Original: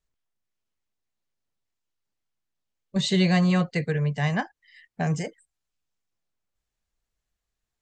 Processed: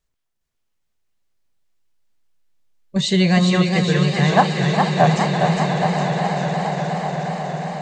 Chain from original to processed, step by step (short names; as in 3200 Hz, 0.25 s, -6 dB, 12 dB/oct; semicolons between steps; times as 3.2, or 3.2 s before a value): 4.32–5.07 band shelf 800 Hz +12 dB; swelling echo 0.12 s, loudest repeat 8, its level -14 dB; warbling echo 0.409 s, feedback 62%, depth 88 cents, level -4.5 dB; gain +5 dB